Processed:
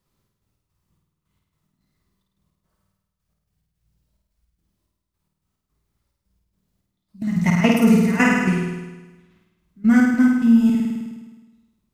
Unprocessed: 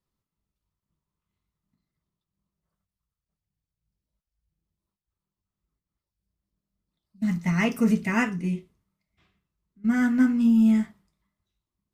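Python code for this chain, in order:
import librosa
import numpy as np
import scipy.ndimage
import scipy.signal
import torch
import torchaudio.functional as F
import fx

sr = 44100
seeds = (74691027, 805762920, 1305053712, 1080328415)

y = fx.step_gate(x, sr, bpm=108, pattern='xx.x.xx..x.x.x', floor_db=-12.0, edge_ms=4.5)
y = fx.room_flutter(y, sr, wall_m=8.9, rt60_s=1.2)
y = fx.rider(y, sr, range_db=10, speed_s=0.5)
y = y * librosa.db_to_amplitude(5.5)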